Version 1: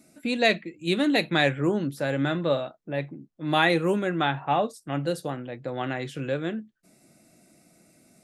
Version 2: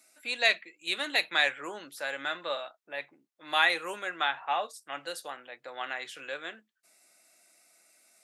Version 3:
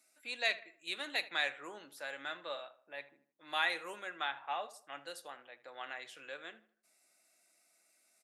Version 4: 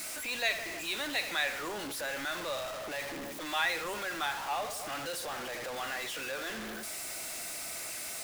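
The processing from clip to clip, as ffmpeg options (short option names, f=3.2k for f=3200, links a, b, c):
-af "highpass=1k"
-filter_complex "[0:a]asplit=2[a][b];[b]adelay=78,lowpass=f=2.4k:p=1,volume=-16dB,asplit=2[c][d];[d]adelay=78,lowpass=f=2.4k:p=1,volume=0.42,asplit=2[e][f];[f]adelay=78,lowpass=f=2.4k:p=1,volume=0.42,asplit=2[g][h];[h]adelay=78,lowpass=f=2.4k:p=1,volume=0.42[i];[a][c][e][g][i]amix=inputs=5:normalize=0,volume=-8.5dB"
-af "aeval=exprs='val(0)+0.5*0.02*sgn(val(0))':c=same"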